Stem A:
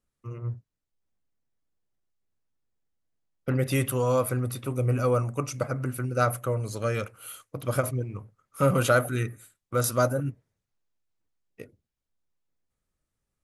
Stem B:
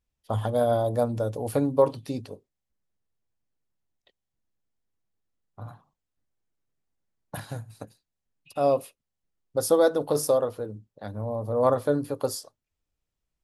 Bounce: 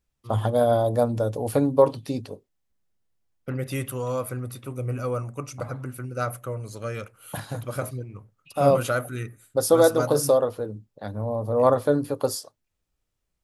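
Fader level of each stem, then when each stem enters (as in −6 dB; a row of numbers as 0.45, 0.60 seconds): −4.0, +3.0 decibels; 0.00, 0.00 seconds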